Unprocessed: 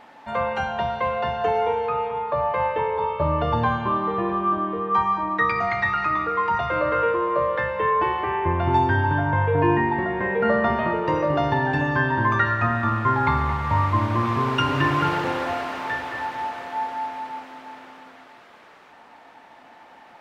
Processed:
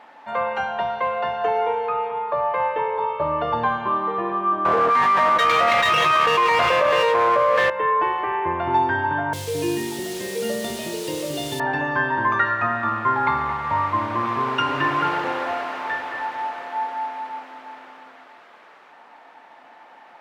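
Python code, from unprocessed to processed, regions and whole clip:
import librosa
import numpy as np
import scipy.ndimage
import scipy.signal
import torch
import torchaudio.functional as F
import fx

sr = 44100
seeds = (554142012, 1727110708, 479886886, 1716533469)

y = fx.chain(x, sr, fx.lower_of_two(delay_ms=1.8),
    fx.env_flatten(amount_pct=100), at=(4.65, 7.7))
y = fx.chain(y, sr, fx.delta_mod(bps=64000, step_db=-31.5),
    fx.curve_eq(hz=(410.0, 1300.0, 2300.0, 3300.0), db=(0, -24, -3, 10)),
    fx.quant_dither(seeds[0], bits=6, dither='none'), at=(9.33, 11.6))
y = fx.highpass(y, sr, hz=580.0, slope=6)
y = fx.high_shelf(y, sr, hz=3100.0, db=-8.5)
y = y * librosa.db_to_amplitude(3.5)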